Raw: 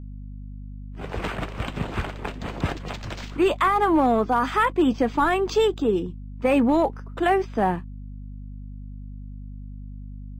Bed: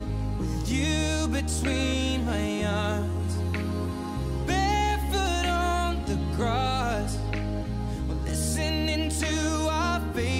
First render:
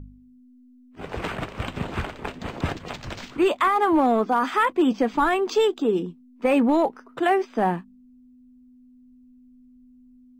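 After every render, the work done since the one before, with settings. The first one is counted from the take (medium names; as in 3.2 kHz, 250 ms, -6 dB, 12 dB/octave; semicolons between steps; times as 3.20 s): de-hum 50 Hz, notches 4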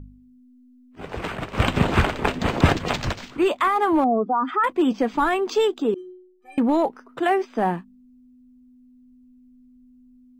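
1.53–3.12 s: gain +10 dB; 4.04–4.64 s: spectral contrast enhancement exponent 2; 5.94–6.58 s: inharmonic resonator 360 Hz, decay 0.8 s, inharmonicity 0.03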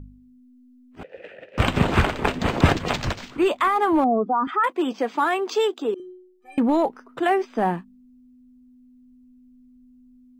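1.03–1.58 s: vowel filter e; 4.47–6.00 s: high-pass 350 Hz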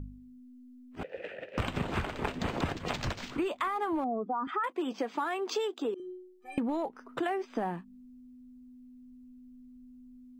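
compression 6:1, threshold -30 dBFS, peak gain reduction 18.5 dB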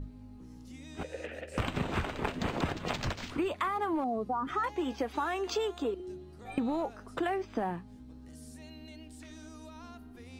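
add bed -24 dB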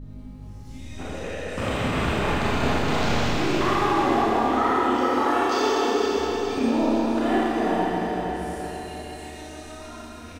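on a send: feedback delay 466 ms, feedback 50%, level -7 dB; on the sum: Schroeder reverb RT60 3.8 s, combs from 27 ms, DRR -10 dB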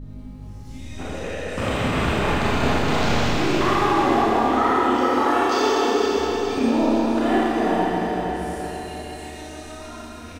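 trim +2.5 dB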